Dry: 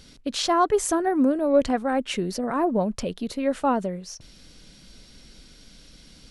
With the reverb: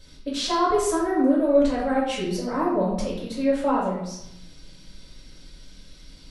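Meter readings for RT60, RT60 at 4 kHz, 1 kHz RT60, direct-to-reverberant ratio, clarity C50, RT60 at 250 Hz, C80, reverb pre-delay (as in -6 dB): 0.80 s, 0.70 s, 0.80 s, -7.5 dB, 1.5 dB, 1.0 s, 5.5 dB, 4 ms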